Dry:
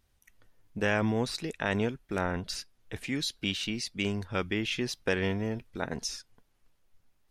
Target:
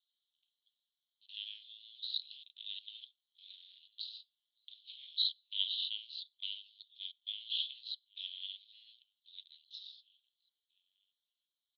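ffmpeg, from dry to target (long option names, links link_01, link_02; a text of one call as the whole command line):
ffmpeg -i in.wav -filter_complex "[0:a]asplit=2[link_01][link_02];[link_02]aeval=exprs='val(0)*gte(abs(val(0)),0.0251)':channel_layout=same,volume=-6.5dB[link_03];[link_01][link_03]amix=inputs=2:normalize=0,asplit=2[link_04][link_05];[link_05]adelay=1574,volume=-21dB,highshelf=frequency=4000:gain=-35.4[link_06];[link_04][link_06]amix=inputs=2:normalize=0,aeval=exprs='val(0)*sin(2*PI*110*n/s)':channel_layout=same,atempo=0.62,asuperpass=centerf=3600:order=8:qfactor=3.1,volume=2.5dB" out.wav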